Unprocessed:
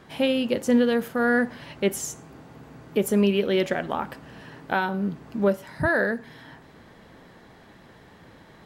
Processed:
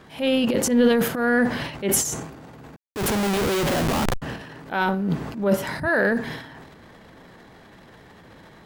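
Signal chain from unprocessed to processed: 2.76–4.22 s: Schmitt trigger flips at -33.5 dBFS; transient shaper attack -8 dB, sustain +12 dB; trim +2 dB

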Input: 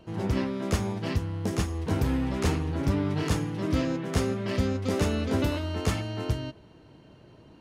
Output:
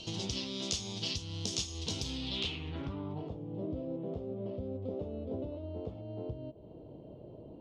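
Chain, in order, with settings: resonant high shelf 2.4 kHz +12 dB, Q 3; compression 8:1, threshold -37 dBFS, peak gain reduction 20 dB; low-pass sweep 6.1 kHz -> 580 Hz, 2.09–3.36 s; trim +1 dB

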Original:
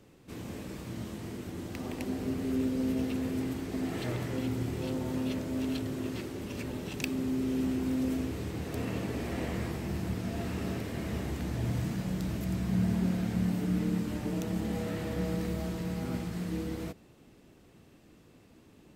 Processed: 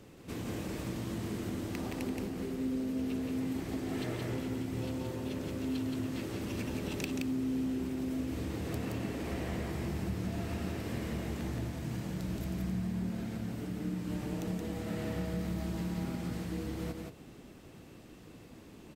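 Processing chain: compression, threshold -39 dBFS, peak gain reduction 14 dB; on a send: delay 173 ms -3.5 dB; on the sum: trim +4 dB

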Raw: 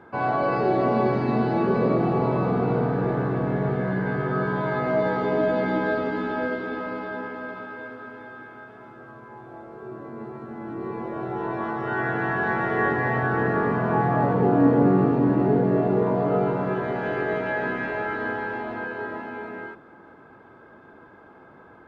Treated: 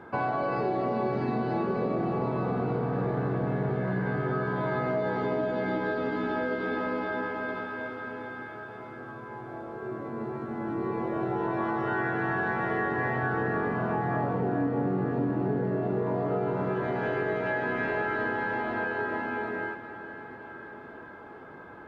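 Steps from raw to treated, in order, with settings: compression, threshold -28 dBFS, peak gain reduction 14 dB; echo that smears into a reverb 462 ms, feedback 71%, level -15 dB; trim +2 dB

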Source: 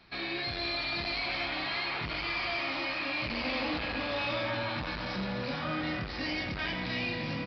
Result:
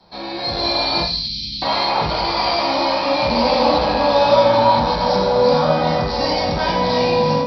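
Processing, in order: 1.02–1.62 s: inverse Chebyshev band-stop 540–1300 Hz, stop band 70 dB; level rider gain up to 8.5 dB; graphic EQ 125/250/500/1000/2000/4000 Hz -9/-10/+4/+4/-7/+4 dB; reverberation RT60 0.45 s, pre-delay 3 ms, DRR -4 dB; trim -3 dB

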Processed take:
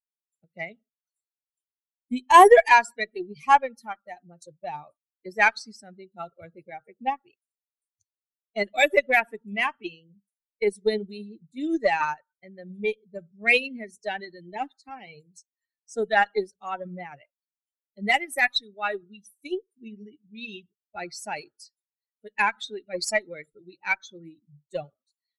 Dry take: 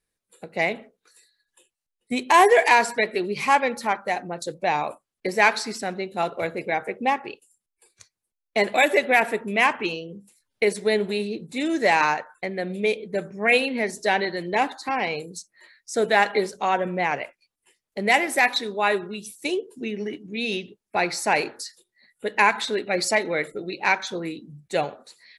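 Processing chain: expander on every frequency bin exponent 2; Chebyshev shaper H 6 -36 dB, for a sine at -8 dBFS; upward expansion 1.5:1, over -35 dBFS; trim +6 dB

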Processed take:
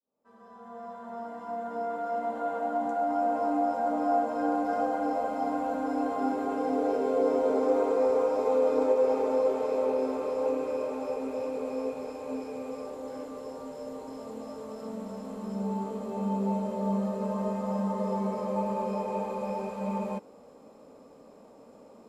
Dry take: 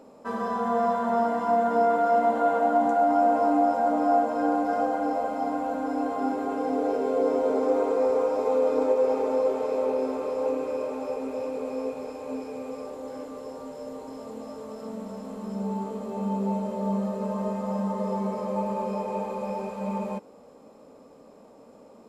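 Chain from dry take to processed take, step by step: fade-in on the opening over 5.61 s; trim -1.5 dB

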